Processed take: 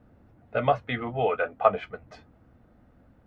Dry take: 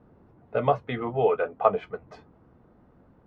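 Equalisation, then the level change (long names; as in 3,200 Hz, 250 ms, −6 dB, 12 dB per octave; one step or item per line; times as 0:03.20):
graphic EQ with 15 bands 160 Hz −7 dB, 400 Hz −10 dB, 1,000 Hz −9 dB
dynamic equaliser 1,400 Hz, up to +4 dB, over −39 dBFS, Q 0.75
+3.5 dB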